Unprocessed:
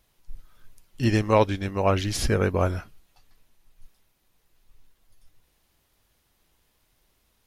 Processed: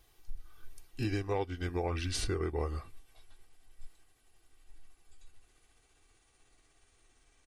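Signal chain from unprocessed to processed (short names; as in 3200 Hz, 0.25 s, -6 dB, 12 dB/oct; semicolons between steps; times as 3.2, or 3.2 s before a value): gliding pitch shift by -8 st starting unshifted; comb 2.6 ms, depth 59%; compressor 6:1, threshold -31 dBFS, peak gain reduction 17 dB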